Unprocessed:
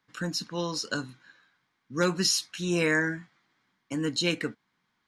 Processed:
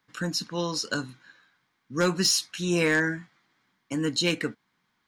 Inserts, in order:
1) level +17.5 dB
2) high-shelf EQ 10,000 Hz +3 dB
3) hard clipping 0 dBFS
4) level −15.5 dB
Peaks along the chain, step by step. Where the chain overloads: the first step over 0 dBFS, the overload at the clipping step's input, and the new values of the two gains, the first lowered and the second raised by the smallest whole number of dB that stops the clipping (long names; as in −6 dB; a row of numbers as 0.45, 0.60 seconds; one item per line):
+5.0, +6.0, 0.0, −15.5 dBFS
step 1, 6.0 dB
step 1 +11.5 dB, step 4 −9.5 dB